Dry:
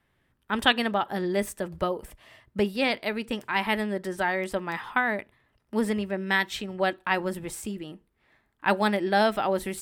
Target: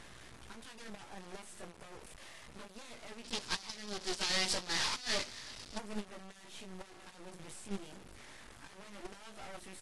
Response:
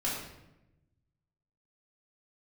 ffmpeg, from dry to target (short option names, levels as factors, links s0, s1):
-filter_complex "[0:a]aeval=exprs='val(0)+0.5*0.0335*sgn(val(0))':c=same,aeval=exprs='0.531*(cos(1*acos(clip(val(0)/0.531,-1,1)))-cos(1*PI/2))+0.0106*(cos(2*acos(clip(val(0)/0.531,-1,1)))-cos(2*PI/2))+0.00596*(cos(3*acos(clip(val(0)/0.531,-1,1)))-cos(3*PI/2))+0.168*(cos(7*acos(clip(val(0)/0.531,-1,1)))-cos(7*PI/2))+0.00531*(cos(8*acos(clip(val(0)/0.531,-1,1)))-cos(8*PI/2))':c=same,lowshelf=f=160:g=-4,aecho=1:1:299|598|897|1196:0.0891|0.0455|0.0232|0.0118,flanger=delay=16.5:depth=5.1:speed=0.3,alimiter=level_in=1.19:limit=0.0631:level=0:latency=1:release=190,volume=0.841,acrusher=bits=4:dc=4:mix=0:aa=0.000001,asettb=1/sr,asplit=3[s0][s1][s2];[s0]atrim=end=3.244[s3];[s1]atrim=start=3.24:end=5.78,asetpts=PTS-STARTPTS,afade=t=in:d=0.004:c=qsin,afade=t=out:st=2.536:d=0.004:c=qsin,equalizer=f=4800:w=1:g=14[s4];[s2]atrim=start=5.776[s5];[s3][s4]acrossfade=d=0.004:c1=hsin:c2=qsin[s6];[s6][s5]acrossfade=d=0.004:c1=qsin:c2=hsin,agate=range=0.2:threshold=0.0282:ratio=16:detection=peak,acontrast=37,volume=0.668" -ar 24000 -c:a aac -b:a 64k